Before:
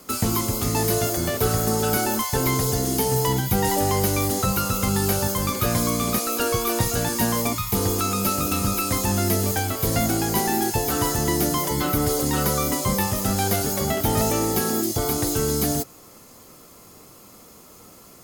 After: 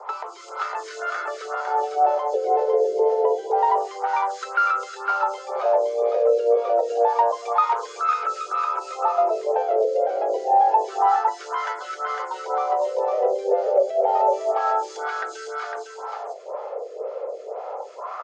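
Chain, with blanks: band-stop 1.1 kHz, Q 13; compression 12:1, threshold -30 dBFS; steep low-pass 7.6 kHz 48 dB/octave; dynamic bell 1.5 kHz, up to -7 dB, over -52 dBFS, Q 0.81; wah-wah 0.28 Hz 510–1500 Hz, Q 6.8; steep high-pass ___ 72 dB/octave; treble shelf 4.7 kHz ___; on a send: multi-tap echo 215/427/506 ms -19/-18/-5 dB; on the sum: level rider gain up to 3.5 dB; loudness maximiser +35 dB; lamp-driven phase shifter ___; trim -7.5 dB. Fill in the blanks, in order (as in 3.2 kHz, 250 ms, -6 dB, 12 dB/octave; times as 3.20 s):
390 Hz, -3.5 dB, 2 Hz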